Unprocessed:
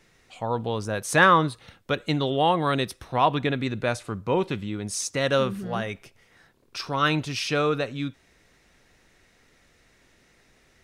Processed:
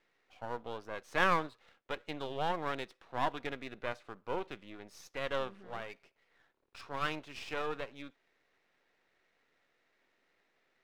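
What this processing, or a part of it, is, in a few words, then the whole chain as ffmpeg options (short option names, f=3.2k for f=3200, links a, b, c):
crystal radio: -af "highpass=370,lowpass=3k,aeval=exprs='if(lt(val(0),0),0.251*val(0),val(0))':c=same,volume=-8.5dB"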